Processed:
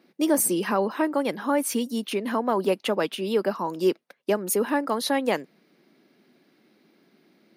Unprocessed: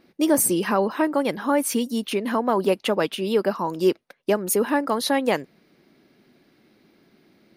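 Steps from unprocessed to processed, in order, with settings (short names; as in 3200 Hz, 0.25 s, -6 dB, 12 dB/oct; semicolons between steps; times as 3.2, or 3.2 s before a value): HPF 160 Hz 24 dB/oct; gain -2.5 dB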